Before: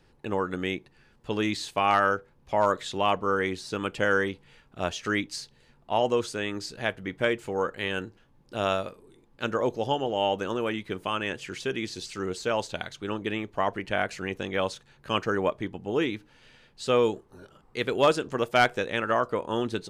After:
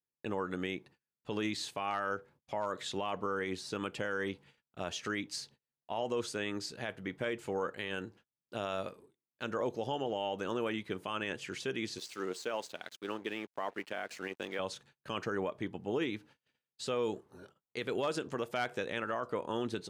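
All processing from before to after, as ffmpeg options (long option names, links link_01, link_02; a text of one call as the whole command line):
ffmpeg -i in.wav -filter_complex "[0:a]asettb=1/sr,asplit=3[link_01][link_02][link_03];[link_01]atrim=end=11.984[link_04];[link_02]atrim=start=11.98:end=14.59,asetpts=PTS-STARTPTS,afade=type=in:duration=0.004:curve=qsin,afade=type=out:start_time=2.606:duration=0.004:curve=qsin,highpass=260,aeval=exprs='sgn(val(0))*max(abs(val(0))-0.00376,0)':channel_layout=same[link_05];[link_03]atrim=start=14.586[link_06];[link_04][link_05]acrossfade=duration=0.004:curve1=hsin:curve2=qsin[link_07];[link_07][link_06]acrossfade=duration=0.004:curve1=qsin:curve2=hsin,agate=range=-35dB:threshold=-51dB:ratio=16:detection=peak,alimiter=limit=-21dB:level=0:latency=1:release=71,highpass=96,volume=-4dB" out.wav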